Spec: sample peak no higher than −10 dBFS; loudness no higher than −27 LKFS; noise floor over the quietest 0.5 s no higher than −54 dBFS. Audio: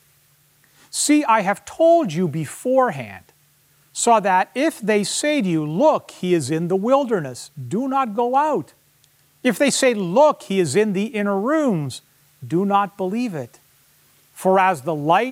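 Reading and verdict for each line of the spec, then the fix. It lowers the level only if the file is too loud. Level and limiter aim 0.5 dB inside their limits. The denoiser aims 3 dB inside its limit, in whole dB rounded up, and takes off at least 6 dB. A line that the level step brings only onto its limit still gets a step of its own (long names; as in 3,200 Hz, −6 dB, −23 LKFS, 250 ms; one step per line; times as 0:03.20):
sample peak −4.5 dBFS: out of spec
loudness −19.5 LKFS: out of spec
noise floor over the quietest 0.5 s −58 dBFS: in spec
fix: level −8 dB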